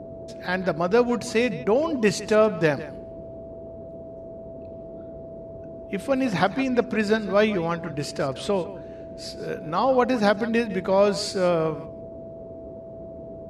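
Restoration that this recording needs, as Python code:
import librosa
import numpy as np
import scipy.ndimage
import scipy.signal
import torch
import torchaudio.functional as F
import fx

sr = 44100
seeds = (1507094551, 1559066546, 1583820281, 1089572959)

y = fx.notch(x, sr, hz=660.0, q=30.0)
y = fx.noise_reduce(y, sr, print_start_s=12.45, print_end_s=12.95, reduce_db=29.0)
y = fx.fix_echo_inverse(y, sr, delay_ms=158, level_db=-16.5)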